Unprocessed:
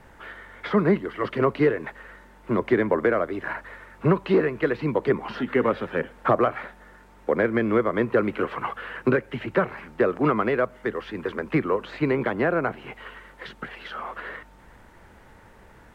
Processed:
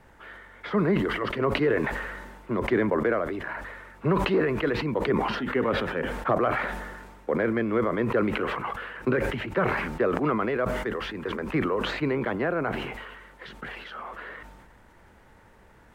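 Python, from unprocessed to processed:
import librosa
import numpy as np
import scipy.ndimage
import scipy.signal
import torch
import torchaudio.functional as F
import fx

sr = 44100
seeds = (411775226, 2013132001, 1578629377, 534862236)

y = fx.sustainer(x, sr, db_per_s=37.0)
y = y * 10.0 ** (-4.5 / 20.0)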